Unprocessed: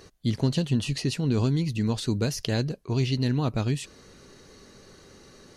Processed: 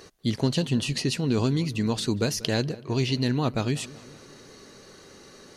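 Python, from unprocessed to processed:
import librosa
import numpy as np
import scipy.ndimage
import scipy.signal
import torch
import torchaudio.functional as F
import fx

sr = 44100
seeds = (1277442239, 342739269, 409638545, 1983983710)

p1 = fx.low_shelf(x, sr, hz=140.0, db=-10.0)
p2 = p1 + fx.echo_filtered(p1, sr, ms=189, feedback_pct=59, hz=2800.0, wet_db=-19.5, dry=0)
y = F.gain(torch.from_numpy(p2), 3.5).numpy()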